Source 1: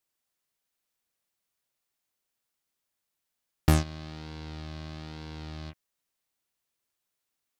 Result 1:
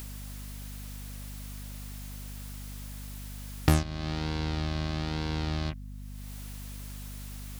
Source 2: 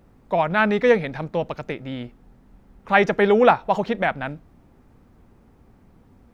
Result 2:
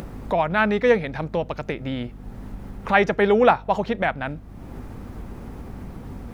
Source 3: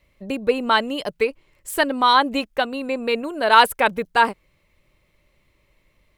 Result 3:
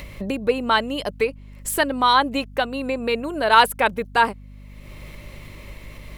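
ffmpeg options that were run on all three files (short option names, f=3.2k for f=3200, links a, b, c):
-af "acompressor=mode=upward:threshold=-20dB:ratio=2.5,aeval=exprs='val(0)+0.0112*(sin(2*PI*50*n/s)+sin(2*PI*2*50*n/s)/2+sin(2*PI*3*50*n/s)/3+sin(2*PI*4*50*n/s)/4+sin(2*PI*5*50*n/s)/5)':c=same,equalizer=f=11k:w=5.8:g=3,volume=-1dB"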